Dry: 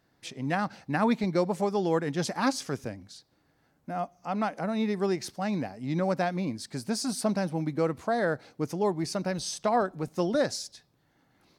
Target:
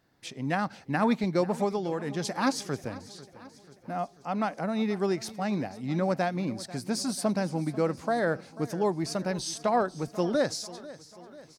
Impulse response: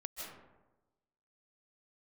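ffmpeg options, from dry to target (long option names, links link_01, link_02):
-filter_complex "[0:a]asettb=1/sr,asplit=3[link_01][link_02][link_03];[link_01]atrim=end=1.754[link_04];[link_02]atrim=start=1.75:end=2.25,asetpts=PTS-STARTPTS,afade=type=in:duration=0.004:curve=qsin,afade=type=out:start_time=0.496:duration=0.004:curve=qsin,acompressor=threshold=-27dB:ratio=6[link_05];[link_03]atrim=start=2.246[link_06];[link_04][link_05]acrossfade=duration=0.004:curve1=hsin:curve2=qsin[link_07];[link_07][link_06]acrossfade=duration=0.004:curve1=qsin:curve2=hsin,asplit=2[link_08][link_09];[link_09]aecho=0:1:491|982|1473|1964|2455:0.126|0.0705|0.0395|0.0221|0.0124[link_10];[link_08][link_10]amix=inputs=2:normalize=0"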